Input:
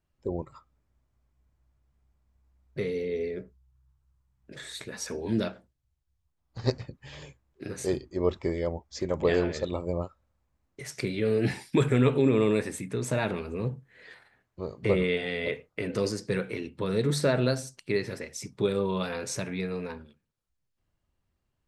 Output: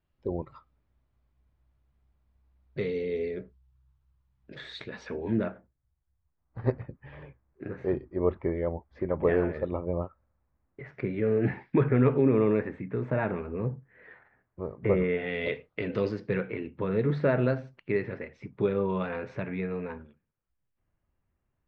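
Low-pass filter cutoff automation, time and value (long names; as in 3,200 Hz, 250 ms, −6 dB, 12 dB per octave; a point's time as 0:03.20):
low-pass filter 24 dB per octave
0:04.80 4,200 Hz
0:05.48 2,000 Hz
0:15.13 2,000 Hz
0:15.56 4,400 Hz
0:16.57 2,400 Hz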